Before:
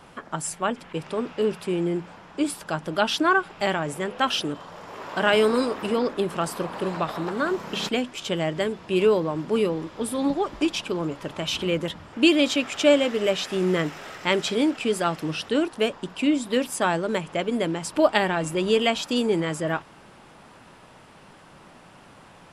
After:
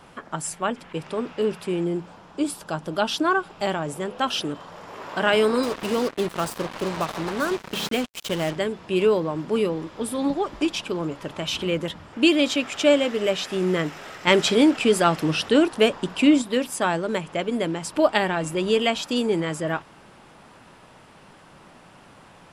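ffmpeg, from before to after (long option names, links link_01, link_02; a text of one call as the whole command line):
ffmpeg -i in.wav -filter_complex "[0:a]asettb=1/sr,asplit=3[link_01][link_02][link_03];[link_01]atrim=end=1.844[link_04];[link_02]atrim=start=1.84:end=4.36,asetpts=PTS-STARTPTS,afade=type=in:duration=0.004:curve=qsin,afade=type=out:start_time=2.516:duration=0.004:curve=qsin,equalizer=frequency=2000:width=1.5:gain=-5.5[link_05];[link_03]atrim=start=4.356[link_06];[link_04][link_05]acrossfade=duration=0.004:curve1=hsin:curve2=qsin[link_07];[link_07][link_06]acrossfade=duration=0.004:curve1=qsin:curve2=hsin,asettb=1/sr,asplit=3[link_08][link_09][link_10];[link_08]atrim=end=5.634[link_11];[link_09]atrim=start=5.63:end=8.56,asetpts=PTS-STARTPTS,afade=type=in:duration=0.004:curve=qsin,afade=type=out:start_time=2.926:duration=0.004:curve=qsin,acrusher=bits=4:mix=0:aa=0.5[link_12];[link_10]atrim=start=8.556[link_13];[link_11][link_12]acrossfade=duration=0.004:curve1=hsin:curve2=qsin[link_14];[link_14][link_13]acrossfade=duration=0.004:curve1=qsin:curve2=hsin,asettb=1/sr,asplit=3[link_15][link_16][link_17];[link_15]atrim=end=14.274[link_18];[link_16]atrim=start=14.27:end=16.42,asetpts=PTS-STARTPTS,afade=type=in:duration=0.004:curve=qsin,afade=type=out:start_time=2.146:duration=0.004:curve=qsin,acontrast=40[link_19];[link_17]atrim=start=16.416[link_20];[link_18][link_19]acrossfade=duration=0.004:curve1=hsin:curve2=qsin[link_21];[link_21][link_20]acrossfade=duration=0.004:curve1=qsin:curve2=hsin" out.wav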